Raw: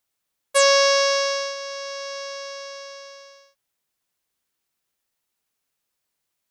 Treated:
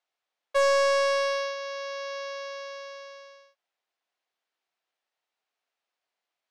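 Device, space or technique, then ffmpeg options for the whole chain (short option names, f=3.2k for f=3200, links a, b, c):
intercom: -af "highpass=430,lowpass=3.8k,equalizer=f=710:t=o:w=0.37:g=6,asoftclip=type=tanh:threshold=-13dB,volume=-1.5dB"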